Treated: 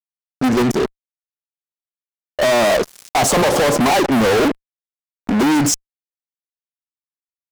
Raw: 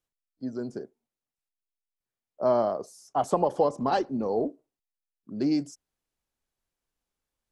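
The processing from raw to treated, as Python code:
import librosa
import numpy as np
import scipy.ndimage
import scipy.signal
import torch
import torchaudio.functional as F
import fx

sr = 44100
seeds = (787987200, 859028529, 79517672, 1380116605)

y = fx.level_steps(x, sr, step_db=16)
y = fx.fuzz(y, sr, gain_db=55.0, gate_db=-57.0)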